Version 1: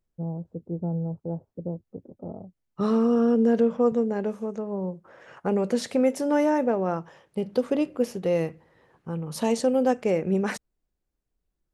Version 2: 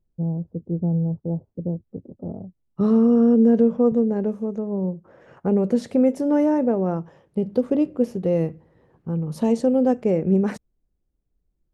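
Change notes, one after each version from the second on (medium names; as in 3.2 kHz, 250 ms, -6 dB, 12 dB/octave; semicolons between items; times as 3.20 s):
master: add tilt shelf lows +8 dB, about 660 Hz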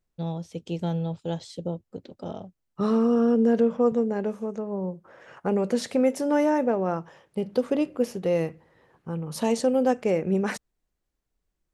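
first voice: remove Gaussian low-pass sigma 11 samples; master: add tilt shelf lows -8 dB, about 660 Hz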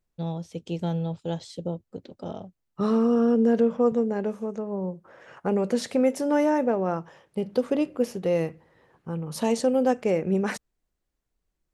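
no change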